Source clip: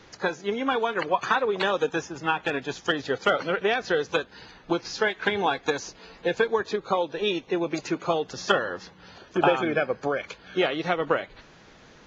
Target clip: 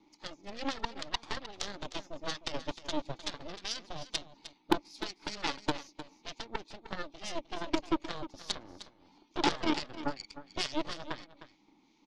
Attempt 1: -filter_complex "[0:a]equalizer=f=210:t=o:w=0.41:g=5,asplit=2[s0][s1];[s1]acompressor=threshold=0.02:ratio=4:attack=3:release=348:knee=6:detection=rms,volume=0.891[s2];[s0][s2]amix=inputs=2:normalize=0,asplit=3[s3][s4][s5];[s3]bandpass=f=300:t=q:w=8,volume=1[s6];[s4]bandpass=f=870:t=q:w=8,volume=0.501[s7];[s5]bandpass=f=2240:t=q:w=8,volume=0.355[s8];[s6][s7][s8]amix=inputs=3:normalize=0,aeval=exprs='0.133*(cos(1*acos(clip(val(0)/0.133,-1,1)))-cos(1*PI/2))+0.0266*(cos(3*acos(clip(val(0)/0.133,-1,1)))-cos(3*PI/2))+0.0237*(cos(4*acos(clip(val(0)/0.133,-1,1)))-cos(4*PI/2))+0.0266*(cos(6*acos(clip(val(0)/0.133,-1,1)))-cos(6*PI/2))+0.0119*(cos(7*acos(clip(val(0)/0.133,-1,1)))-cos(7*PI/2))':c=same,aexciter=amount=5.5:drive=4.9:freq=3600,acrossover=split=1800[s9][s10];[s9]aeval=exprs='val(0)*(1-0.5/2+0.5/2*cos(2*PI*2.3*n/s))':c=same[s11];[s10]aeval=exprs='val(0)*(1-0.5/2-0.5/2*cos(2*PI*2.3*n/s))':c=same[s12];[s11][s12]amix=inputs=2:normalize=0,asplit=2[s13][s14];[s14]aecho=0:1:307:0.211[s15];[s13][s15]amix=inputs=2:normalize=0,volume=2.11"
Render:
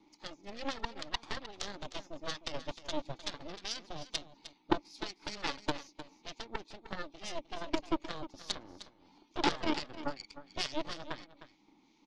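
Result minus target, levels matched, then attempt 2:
compression: peak gain reduction +5 dB
-filter_complex "[0:a]equalizer=f=210:t=o:w=0.41:g=5,asplit=2[s0][s1];[s1]acompressor=threshold=0.0447:ratio=4:attack=3:release=348:knee=6:detection=rms,volume=0.891[s2];[s0][s2]amix=inputs=2:normalize=0,asplit=3[s3][s4][s5];[s3]bandpass=f=300:t=q:w=8,volume=1[s6];[s4]bandpass=f=870:t=q:w=8,volume=0.501[s7];[s5]bandpass=f=2240:t=q:w=8,volume=0.355[s8];[s6][s7][s8]amix=inputs=3:normalize=0,aeval=exprs='0.133*(cos(1*acos(clip(val(0)/0.133,-1,1)))-cos(1*PI/2))+0.0266*(cos(3*acos(clip(val(0)/0.133,-1,1)))-cos(3*PI/2))+0.0237*(cos(4*acos(clip(val(0)/0.133,-1,1)))-cos(4*PI/2))+0.0266*(cos(6*acos(clip(val(0)/0.133,-1,1)))-cos(6*PI/2))+0.0119*(cos(7*acos(clip(val(0)/0.133,-1,1)))-cos(7*PI/2))':c=same,aexciter=amount=5.5:drive=4.9:freq=3600,acrossover=split=1800[s9][s10];[s9]aeval=exprs='val(0)*(1-0.5/2+0.5/2*cos(2*PI*2.3*n/s))':c=same[s11];[s10]aeval=exprs='val(0)*(1-0.5/2-0.5/2*cos(2*PI*2.3*n/s))':c=same[s12];[s11][s12]amix=inputs=2:normalize=0,asplit=2[s13][s14];[s14]aecho=0:1:307:0.211[s15];[s13][s15]amix=inputs=2:normalize=0,volume=2.11"

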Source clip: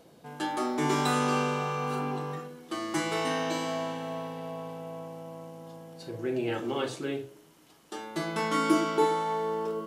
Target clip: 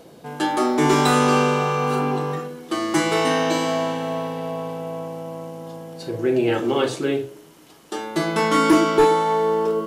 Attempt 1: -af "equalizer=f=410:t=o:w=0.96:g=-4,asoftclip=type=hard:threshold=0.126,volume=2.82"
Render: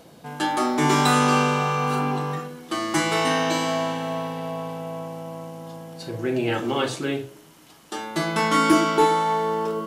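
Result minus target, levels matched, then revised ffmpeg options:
500 Hz band -3.0 dB
-af "equalizer=f=410:t=o:w=0.96:g=2.5,asoftclip=type=hard:threshold=0.126,volume=2.82"

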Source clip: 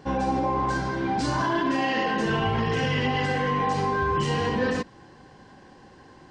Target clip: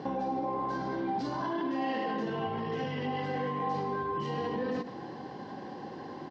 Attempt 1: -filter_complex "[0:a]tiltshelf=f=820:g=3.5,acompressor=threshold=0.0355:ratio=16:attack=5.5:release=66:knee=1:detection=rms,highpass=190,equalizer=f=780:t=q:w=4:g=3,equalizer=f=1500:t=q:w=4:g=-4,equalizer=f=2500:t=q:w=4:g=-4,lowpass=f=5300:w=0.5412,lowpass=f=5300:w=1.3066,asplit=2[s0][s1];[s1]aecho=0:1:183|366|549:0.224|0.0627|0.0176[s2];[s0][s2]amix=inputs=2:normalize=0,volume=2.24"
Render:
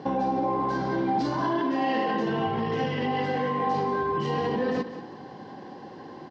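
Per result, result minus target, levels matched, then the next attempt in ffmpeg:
echo 79 ms late; compression: peak gain reduction -6.5 dB
-filter_complex "[0:a]tiltshelf=f=820:g=3.5,acompressor=threshold=0.0355:ratio=16:attack=5.5:release=66:knee=1:detection=rms,highpass=190,equalizer=f=780:t=q:w=4:g=3,equalizer=f=1500:t=q:w=4:g=-4,equalizer=f=2500:t=q:w=4:g=-4,lowpass=f=5300:w=0.5412,lowpass=f=5300:w=1.3066,asplit=2[s0][s1];[s1]aecho=0:1:104|208|312:0.224|0.0627|0.0176[s2];[s0][s2]amix=inputs=2:normalize=0,volume=2.24"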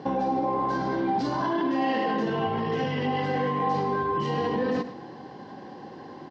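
compression: peak gain reduction -6.5 dB
-filter_complex "[0:a]tiltshelf=f=820:g=3.5,acompressor=threshold=0.0158:ratio=16:attack=5.5:release=66:knee=1:detection=rms,highpass=190,equalizer=f=780:t=q:w=4:g=3,equalizer=f=1500:t=q:w=4:g=-4,equalizer=f=2500:t=q:w=4:g=-4,lowpass=f=5300:w=0.5412,lowpass=f=5300:w=1.3066,asplit=2[s0][s1];[s1]aecho=0:1:104|208|312:0.224|0.0627|0.0176[s2];[s0][s2]amix=inputs=2:normalize=0,volume=2.24"

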